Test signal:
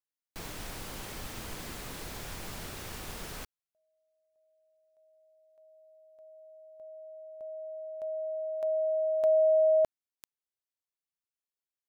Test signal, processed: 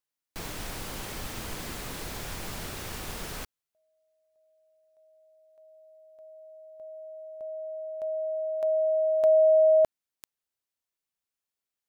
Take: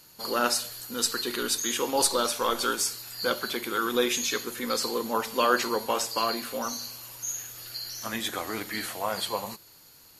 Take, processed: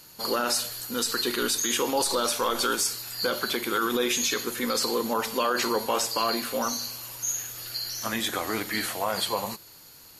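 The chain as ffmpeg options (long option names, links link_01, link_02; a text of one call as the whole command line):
ffmpeg -i in.wav -af "alimiter=limit=-19.5dB:level=0:latency=1:release=38,volume=4dB" out.wav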